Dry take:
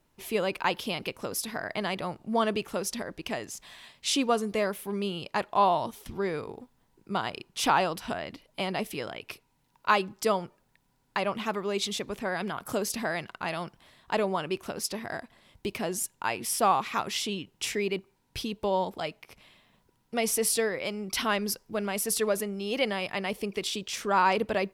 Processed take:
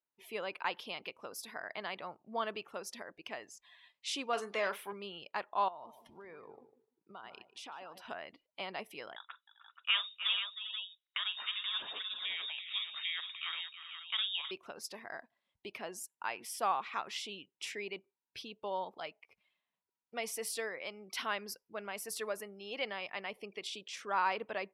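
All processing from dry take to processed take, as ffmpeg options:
ffmpeg -i in.wav -filter_complex "[0:a]asettb=1/sr,asplit=3[link_01][link_02][link_03];[link_01]atrim=end=4.334[link_04];[link_02]atrim=start=4.33:end=4.93,asetpts=PTS-STARTPTS,afade=type=in:duration=0.004:curve=qsin,afade=type=out:start_time=0.596:duration=0.004:curve=qsin,asplit=2[link_05][link_06];[link_06]adelay=40,volume=-13dB[link_07];[link_05][link_07]amix=inputs=2:normalize=0,atrim=end_sample=26460,asplit=2[link_08][link_09];[link_09]highpass=frequency=720:poles=1,volume=15dB,asoftclip=type=tanh:threshold=-13.5dB[link_10];[link_08][link_10]amix=inputs=2:normalize=0,lowpass=frequency=6000:poles=1,volume=-6dB[link_11];[link_03]atrim=start=4.926[link_12];[link_04][link_11]acrossfade=duration=0.004:curve1=hsin:curve2=qsin[link_13];[link_13][link_12]acrossfade=duration=0.004:curve1=qsin:curve2=hsin,asettb=1/sr,asplit=3[link_14][link_15][link_16];[link_14]atrim=end=5.684[link_17];[link_15]atrim=start=5.68:end=8.02,asetpts=PTS-STARTPTS,afade=type=in:duration=0.004:curve=qsin,afade=type=out:start_time=2.336:duration=0.004:curve=qsin,acompressor=threshold=-34dB:ratio=10:attack=3.2:release=140:knee=1:detection=peak,asplit=2[link_18][link_19];[link_19]adelay=150,lowpass=frequency=3900:poles=1,volume=-10dB,asplit=2[link_20][link_21];[link_21]adelay=150,lowpass=frequency=3900:poles=1,volume=0.36,asplit=2[link_22][link_23];[link_23]adelay=150,lowpass=frequency=3900:poles=1,volume=0.36,asplit=2[link_24][link_25];[link_25]adelay=150,lowpass=frequency=3900:poles=1,volume=0.36[link_26];[link_18][link_20][link_22][link_24][link_26]amix=inputs=5:normalize=0,atrim=end_sample=103194[link_27];[link_16]atrim=start=8.016[link_28];[link_17][link_27]acrossfade=duration=0.004:curve1=hsin:curve2=qsin[link_29];[link_29][link_28]acrossfade=duration=0.004:curve1=qsin:curve2=hsin,asettb=1/sr,asplit=3[link_30][link_31][link_32];[link_30]atrim=end=9.164[link_33];[link_31]atrim=start=9.16:end=14.51,asetpts=PTS-STARTPTS,afade=type=in:duration=0.004:curve=qsin,afade=type=out:start_time=5.346:duration=0.004:curve=qsin,aecho=1:1:43|311|349|395|480:0.211|0.266|0.1|0.211|0.376,atrim=end_sample=235935,lowpass=frequency=3300:width_type=q:width=0.5098,lowpass=frequency=3300:width_type=q:width=0.6013,lowpass=frequency=3300:width_type=q:width=0.9,lowpass=frequency=3300:width_type=q:width=2.563,afreqshift=-3900[link_34];[link_32]atrim=start=14.506[link_35];[link_33][link_34]acrossfade=duration=0.004:curve1=hsin:curve2=qsin[link_36];[link_36][link_35]acrossfade=duration=0.004:curve1=qsin:curve2=hsin,afftdn=noise_reduction=17:noise_floor=-48,highpass=frequency=1200:poles=1,equalizer=frequency=12000:width_type=o:width=2.4:gain=-10.5,volume=-3.5dB" out.wav

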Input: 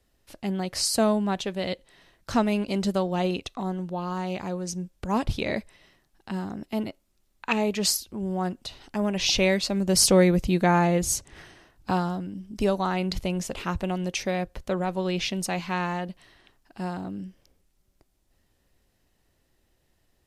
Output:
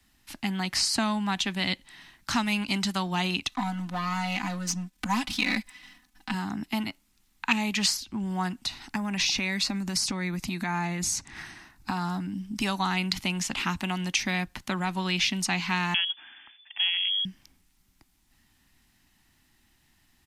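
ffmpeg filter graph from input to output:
ffmpeg -i in.wav -filter_complex "[0:a]asettb=1/sr,asplit=3[link_01][link_02][link_03];[link_01]atrim=end=3.514[link_04];[link_02]atrim=start=3.51:end=6.34,asetpts=PTS-STARTPTS,afade=type=in:duration=0.004:curve=qsin,afade=type=out:start_time=2.826:duration=0.004:curve=qsin,aeval=exprs='if(lt(val(0),0),0.447*val(0),val(0))':channel_layout=same,aecho=1:1:4:0.98,atrim=end_sample=124803[link_05];[link_03]atrim=start=6.336[link_06];[link_04][link_05]acrossfade=duration=0.004:curve1=hsin:curve2=qsin[link_07];[link_07][link_06]acrossfade=duration=0.004:curve1=qsin:curve2=hsin,asettb=1/sr,asplit=3[link_08][link_09][link_10];[link_08]atrim=end=8.654[link_11];[link_09]atrim=start=8.65:end=12.32,asetpts=PTS-STARTPTS,afade=type=in:duration=0.004:curve=qsin,afade=type=out:start_time=3.666:duration=0.004:curve=qsin,equalizer=frequency=3100:width_type=o:width=0.22:gain=-8,acompressor=threshold=-26dB:ratio=6:attack=3.2:release=140:knee=1:detection=peak[link_12];[link_10]atrim=start=12.316[link_13];[link_11][link_12]acrossfade=duration=0.004:curve1=hsin:curve2=qsin[link_14];[link_14][link_13]acrossfade=duration=0.004:curve1=qsin:curve2=hsin,asettb=1/sr,asplit=3[link_15][link_16][link_17];[link_15]atrim=end=15.944[link_18];[link_16]atrim=start=15.94:end=17.25,asetpts=PTS-STARTPTS,afade=type=in:duration=0.004:curve=qsin,afade=type=out:start_time=1.306:duration=0.004:curve=qsin,lowpass=frequency=3000:width_type=q:width=0.5098,lowpass=frequency=3000:width_type=q:width=0.6013,lowpass=frequency=3000:width_type=q:width=0.9,lowpass=frequency=3000:width_type=q:width=2.563,afreqshift=-3500,equalizer=frequency=170:width_type=o:width=0.58:gain=-8.5[link_19];[link_17]atrim=start=17.246[link_20];[link_18][link_19]acrossfade=duration=0.004:curve1=hsin:curve2=qsin[link_21];[link_21][link_20]acrossfade=duration=0.004:curve1=qsin:curve2=hsin,firequalizer=gain_entry='entry(250,0);entry(480,-29);entry(830,-3);entry(2000,7)':delay=0.05:min_phase=1,acrossover=split=130|640|2300|7800[link_22][link_23][link_24][link_25][link_26];[link_22]acompressor=threshold=-49dB:ratio=4[link_27];[link_23]acompressor=threshold=-37dB:ratio=4[link_28];[link_24]acompressor=threshold=-35dB:ratio=4[link_29];[link_25]acompressor=threshold=-26dB:ratio=4[link_30];[link_26]acompressor=threshold=-45dB:ratio=4[link_31];[link_27][link_28][link_29][link_30][link_31]amix=inputs=5:normalize=0,equalizer=frequency=490:width_type=o:width=2.1:gain=13.5" out.wav

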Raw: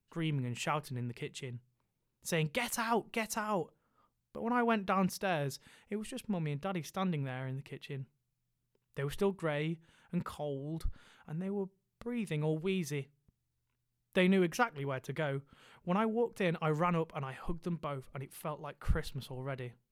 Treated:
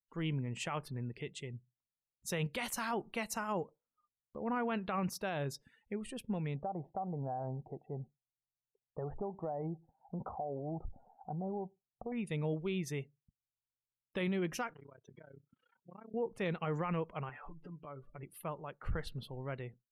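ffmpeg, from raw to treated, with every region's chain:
ffmpeg -i in.wav -filter_complex "[0:a]asettb=1/sr,asplit=3[link_01][link_02][link_03];[link_01]atrim=end=6.564[link_04];[link_02]atrim=start=6.56:end=12.12,asetpts=PTS-STARTPTS,afade=type=in:duration=0.004:curve=qsin,afade=type=out:start_time=5.556:duration=0.004:curve=qsin,lowpass=frequency=750:width_type=q:width=8,acompressor=threshold=-33dB:ratio=10:attack=3.2:release=140:knee=1:detection=peak[link_05];[link_03]atrim=start=12.116[link_06];[link_04][link_05]acrossfade=duration=0.004:curve1=hsin:curve2=qsin[link_07];[link_07][link_06]acrossfade=duration=0.004:curve1=qsin:curve2=hsin,asettb=1/sr,asplit=3[link_08][link_09][link_10];[link_08]atrim=end=14.734[link_11];[link_09]atrim=start=14.73:end=16.14,asetpts=PTS-STARTPTS,afade=type=in:duration=0.004:curve=qsin,afade=type=out:start_time=1.406:duration=0.004:curve=qsin,highpass=130,lowpass=4600,acompressor=threshold=-47dB:ratio=5:attack=3.2:release=140:knee=1:detection=peak,tremolo=f=31:d=0.947[link_12];[link_10]atrim=start=16.136[link_13];[link_11][link_12]acrossfade=duration=0.004:curve1=hsin:curve2=qsin[link_14];[link_14][link_13]acrossfade=duration=0.004:curve1=qsin:curve2=hsin,asettb=1/sr,asplit=3[link_15][link_16][link_17];[link_15]atrim=end=17.294[link_18];[link_16]atrim=start=17.29:end=18.23,asetpts=PTS-STARTPTS,afade=type=in:duration=0.004:curve=qsin,afade=type=out:start_time=0.936:duration=0.004:curve=qsin,bass=frequency=250:gain=-5,treble=frequency=4000:gain=-12,acompressor=threshold=-48dB:ratio=4:attack=3.2:release=140:knee=1:detection=peak,aecho=1:1:6.9:0.92,atrim=end_sample=41454[link_19];[link_17]atrim=start=18.226[link_20];[link_18][link_19]acrossfade=duration=0.004:curve1=hsin:curve2=qsin[link_21];[link_21][link_20]acrossfade=duration=0.004:curve1=qsin:curve2=hsin,afftdn=noise_reduction=23:noise_floor=-55,alimiter=level_in=2dB:limit=-24dB:level=0:latency=1:release=20,volume=-2dB,volume=-1.5dB" out.wav

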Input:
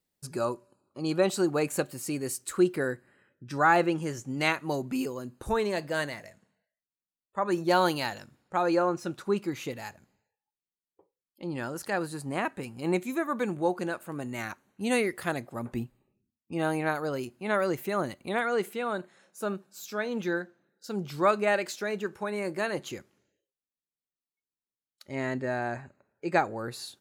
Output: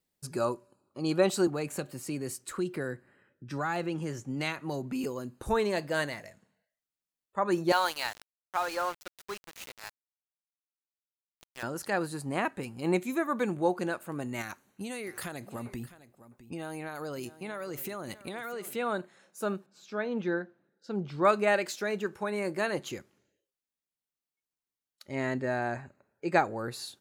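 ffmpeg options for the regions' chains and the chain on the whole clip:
ffmpeg -i in.wav -filter_complex "[0:a]asettb=1/sr,asplit=3[link_01][link_02][link_03];[link_01]atrim=end=1.474[link_04];[link_02]atrim=start=1.47:end=5.04,asetpts=PTS-STARTPTS,afade=type=in:duration=0.004:curve=qsin,afade=type=out:start_time=3.566:duration=0.004:curve=qsin,highshelf=frequency=4000:gain=-6.5,acrossover=split=160|3000[link_05][link_06][link_07];[link_06]acompressor=threshold=-32dB:ratio=3:attack=3.2:release=140:knee=2.83:detection=peak[link_08];[link_05][link_08][link_07]amix=inputs=3:normalize=0[link_09];[link_03]atrim=start=5.036[link_10];[link_04][link_09]acrossfade=duration=0.004:curve1=hsin:curve2=qsin[link_11];[link_11][link_10]acrossfade=duration=0.004:curve1=qsin:curve2=hsin,asettb=1/sr,asplit=3[link_12][link_13][link_14];[link_12]atrim=end=7.724[link_15];[link_13]atrim=start=7.72:end=11.63,asetpts=PTS-STARTPTS,afade=type=in:duration=0.004:curve=qsin,afade=type=out:start_time=3.906:duration=0.004:curve=qsin,highpass=830,aeval=exprs='val(0)*gte(abs(val(0)),0.0133)':channel_layout=same[link_16];[link_14]atrim=start=11.626[link_17];[link_15][link_16]acrossfade=duration=0.004:curve1=hsin:curve2=qsin[link_18];[link_18][link_17]acrossfade=duration=0.004:curve1=qsin:curve2=hsin,asettb=1/sr,asplit=3[link_19][link_20][link_21];[link_19]atrim=end=14.414[link_22];[link_20]atrim=start=14.41:end=18.76,asetpts=PTS-STARTPTS,afade=type=in:duration=0.004:curve=qsin,afade=type=out:start_time=4.346:duration=0.004:curve=qsin,highshelf=frequency=3900:gain=7.5,acompressor=threshold=-33dB:ratio=16:attack=3.2:release=140:knee=1:detection=peak,aecho=1:1:658:0.158,atrim=end_sample=191835[link_23];[link_21]atrim=start=18.756[link_24];[link_22][link_23]acrossfade=duration=0.004:curve1=hsin:curve2=qsin[link_25];[link_25][link_24]acrossfade=duration=0.004:curve1=qsin:curve2=hsin,asettb=1/sr,asplit=3[link_26][link_27][link_28];[link_26]atrim=end=19.664[link_29];[link_27]atrim=start=19.66:end=21.25,asetpts=PTS-STARTPTS,afade=type=in:duration=0.004:curve=qsin,afade=type=out:start_time=1.586:duration=0.004:curve=qsin,lowpass=3600,equalizer=frequency=2600:width=0.46:gain=-3.5[link_30];[link_28]atrim=start=21.246[link_31];[link_29][link_30]acrossfade=duration=0.004:curve1=hsin:curve2=qsin[link_32];[link_32][link_31]acrossfade=duration=0.004:curve1=qsin:curve2=hsin" out.wav

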